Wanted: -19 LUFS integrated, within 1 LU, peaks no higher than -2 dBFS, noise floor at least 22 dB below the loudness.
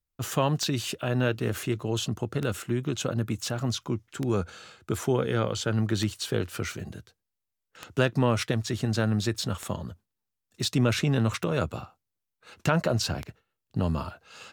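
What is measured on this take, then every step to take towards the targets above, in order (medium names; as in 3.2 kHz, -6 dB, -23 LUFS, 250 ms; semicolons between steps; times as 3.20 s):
clicks found 8; loudness -28.5 LUFS; peak level -8.5 dBFS; loudness target -19.0 LUFS
-> de-click; trim +9.5 dB; peak limiter -2 dBFS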